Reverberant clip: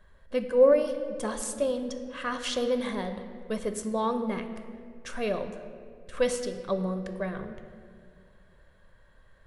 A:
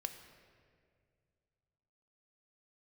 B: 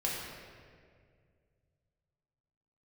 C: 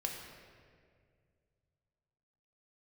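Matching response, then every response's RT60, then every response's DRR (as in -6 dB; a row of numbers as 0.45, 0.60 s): A; 2.1, 2.1, 2.1 s; 7.0, -5.0, 0.5 dB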